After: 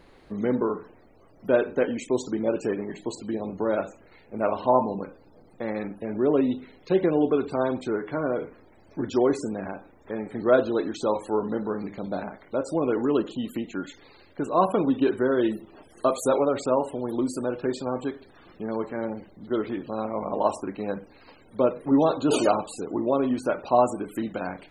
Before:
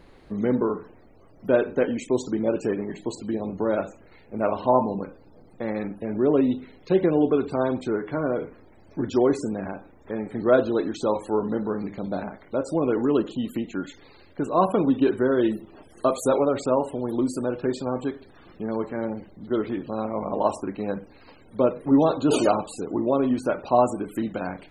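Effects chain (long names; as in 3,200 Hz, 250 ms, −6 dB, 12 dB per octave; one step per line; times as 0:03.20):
low-shelf EQ 270 Hz −4.5 dB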